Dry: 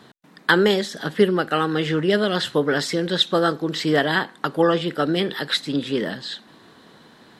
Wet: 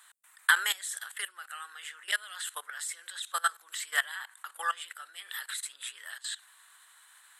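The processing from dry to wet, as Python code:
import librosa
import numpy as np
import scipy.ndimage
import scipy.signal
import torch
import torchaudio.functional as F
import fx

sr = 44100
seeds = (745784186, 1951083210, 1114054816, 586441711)

y = fx.high_shelf_res(x, sr, hz=6600.0, db=10.0, q=3.0)
y = fx.level_steps(y, sr, step_db=18)
y = scipy.signal.sosfilt(scipy.signal.butter(4, 1200.0, 'highpass', fs=sr, output='sos'), y)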